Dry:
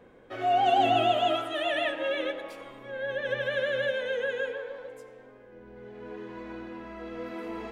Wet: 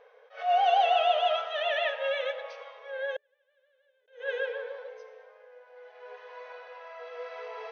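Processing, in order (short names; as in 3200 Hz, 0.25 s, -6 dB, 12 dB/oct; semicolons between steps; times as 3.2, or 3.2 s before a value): 3.16–4.08 flipped gate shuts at -25 dBFS, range -41 dB; FFT band-pass 430–6400 Hz; attack slew limiter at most 180 dB/s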